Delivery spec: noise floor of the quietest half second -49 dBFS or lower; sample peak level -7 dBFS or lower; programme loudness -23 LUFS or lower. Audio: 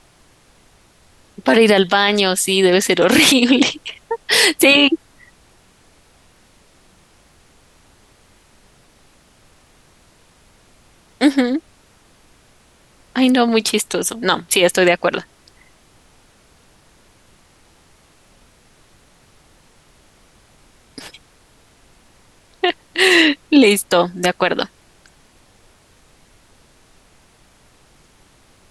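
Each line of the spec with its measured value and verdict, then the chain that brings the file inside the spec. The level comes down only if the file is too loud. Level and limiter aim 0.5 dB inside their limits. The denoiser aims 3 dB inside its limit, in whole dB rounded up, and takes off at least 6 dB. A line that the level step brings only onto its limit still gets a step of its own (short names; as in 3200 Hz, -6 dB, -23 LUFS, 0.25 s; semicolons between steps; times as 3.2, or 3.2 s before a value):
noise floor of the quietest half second -52 dBFS: OK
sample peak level -1.5 dBFS: fail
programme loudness -15.0 LUFS: fail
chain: gain -8.5 dB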